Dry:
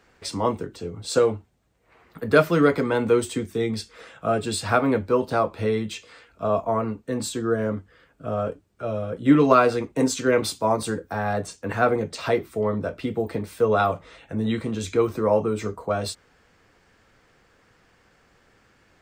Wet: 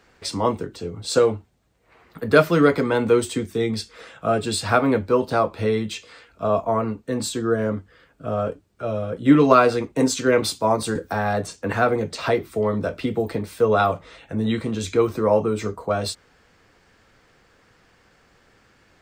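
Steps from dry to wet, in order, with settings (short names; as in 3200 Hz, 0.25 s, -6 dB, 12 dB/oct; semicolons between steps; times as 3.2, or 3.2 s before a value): bell 4300 Hz +2 dB; 10.95–13.33 three-band squash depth 40%; gain +2 dB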